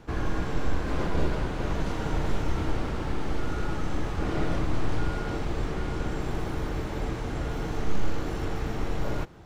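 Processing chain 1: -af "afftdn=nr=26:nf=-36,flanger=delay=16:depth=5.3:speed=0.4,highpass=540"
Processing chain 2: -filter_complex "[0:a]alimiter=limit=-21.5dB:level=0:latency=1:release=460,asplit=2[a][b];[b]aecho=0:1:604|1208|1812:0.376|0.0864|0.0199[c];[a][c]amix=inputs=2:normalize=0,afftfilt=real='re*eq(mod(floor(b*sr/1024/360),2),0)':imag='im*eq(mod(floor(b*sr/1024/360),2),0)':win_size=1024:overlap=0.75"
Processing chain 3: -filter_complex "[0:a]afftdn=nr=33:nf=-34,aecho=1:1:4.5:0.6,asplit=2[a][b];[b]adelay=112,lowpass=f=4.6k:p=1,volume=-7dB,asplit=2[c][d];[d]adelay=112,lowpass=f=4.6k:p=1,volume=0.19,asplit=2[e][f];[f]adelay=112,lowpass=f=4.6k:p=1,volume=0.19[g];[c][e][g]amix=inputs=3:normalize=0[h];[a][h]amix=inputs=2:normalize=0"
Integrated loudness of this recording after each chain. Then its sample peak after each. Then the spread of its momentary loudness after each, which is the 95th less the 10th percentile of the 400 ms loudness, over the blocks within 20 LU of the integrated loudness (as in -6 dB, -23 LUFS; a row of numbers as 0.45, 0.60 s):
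-43.5, -36.0, -31.0 LUFS; -28.5, -19.0, -7.0 dBFS; 5, 3, 3 LU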